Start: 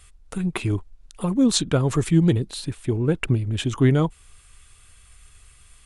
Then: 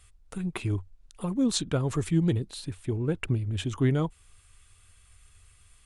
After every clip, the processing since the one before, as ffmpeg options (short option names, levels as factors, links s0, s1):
-af "equalizer=f=92:t=o:w=0.26:g=8,volume=0.447"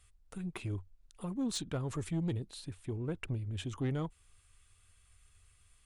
-af "asoftclip=type=tanh:threshold=0.1,volume=0.422"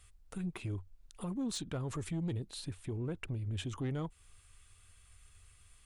-af "alimiter=level_in=3.55:limit=0.0631:level=0:latency=1:release=208,volume=0.282,volume=1.58"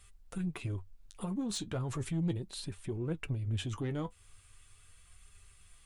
-af "flanger=delay=5:depth=5.1:regen=50:speed=0.37:shape=sinusoidal,volume=2"